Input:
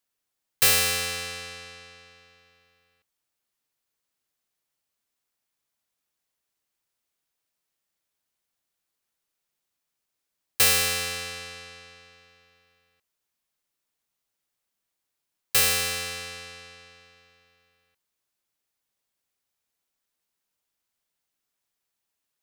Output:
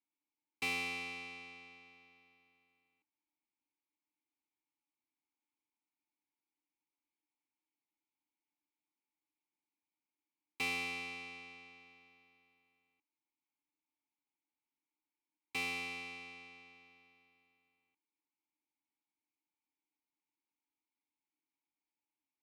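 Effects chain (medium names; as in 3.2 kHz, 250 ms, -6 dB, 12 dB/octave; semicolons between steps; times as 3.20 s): vowel filter u; trim +4.5 dB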